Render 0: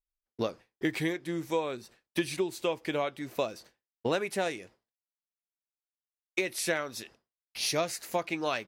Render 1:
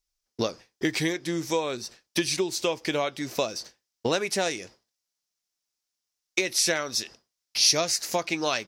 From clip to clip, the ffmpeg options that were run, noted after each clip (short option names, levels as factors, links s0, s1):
-filter_complex "[0:a]equalizer=f=5500:t=o:w=0.9:g=13,asplit=2[s0][s1];[s1]acompressor=threshold=0.02:ratio=6,volume=1.12[s2];[s0][s2]amix=inputs=2:normalize=0"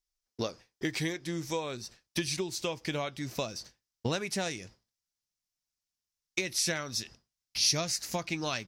-af "asubboost=boost=4.5:cutoff=190,volume=0.501"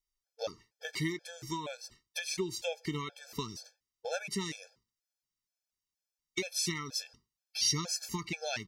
-af "afftfilt=real='re*gt(sin(2*PI*2.1*pts/sr)*(1-2*mod(floor(b*sr/1024/450),2)),0)':imag='im*gt(sin(2*PI*2.1*pts/sr)*(1-2*mod(floor(b*sr/1024/450),2)),0)':win_size=1024:overlap=0.75"